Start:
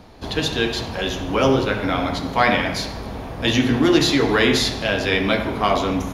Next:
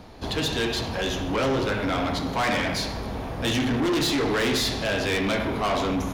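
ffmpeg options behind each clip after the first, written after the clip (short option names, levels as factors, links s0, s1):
-af "asoftclip=type=tanh:threshold=0.0944"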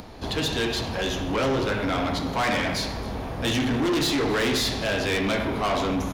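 -af "aecho=1:1:270:0.0841,acompressor=mode=upward:threshold=0.0141:ratio=2.5"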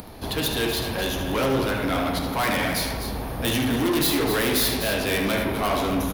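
-filter_complex "[0:a]aexciter=amount=7.8:drive=1.5:freq=9600,asplit=2[s0][s1];[s1]aecho=0:1:75|254:0.335|0.335[s2];[s0][s2]amix=inputs=2:normalize=0"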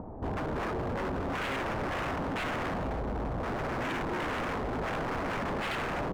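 -af "lowpass=f=1000:w=0.5412,lowpass=f=1000:w=1.3066,aeval=exprs='0.0398*(abs(mod(val(0)/0.0398+3,4)-2)-1)':c=same"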